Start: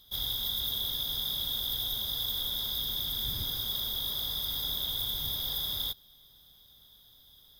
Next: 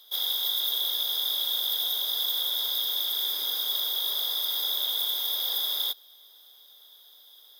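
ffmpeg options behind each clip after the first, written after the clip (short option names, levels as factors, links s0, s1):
-af "highpass=f=420:w=0.5412,highpass=f=420:w=1.3066,volume=1.78"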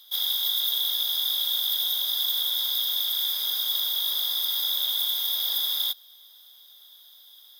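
-af "highpass=f=1300:p=1,volume=1.33"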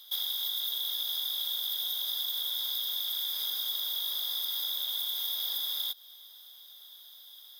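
-filter_complex "[0:a]acrossover=split=280[s0][s1];[s1]acompressor=threshold=0.0316:ratio=6[s2];[s0][s2]amix=inputs=2:normalize=0"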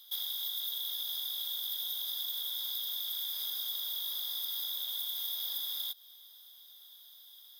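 -af "highshelf=f=5900:g=4.5,volume=0.501"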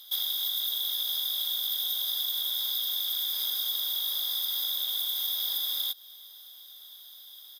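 -af "aresample=32000,aresample=44100,volume=2.24"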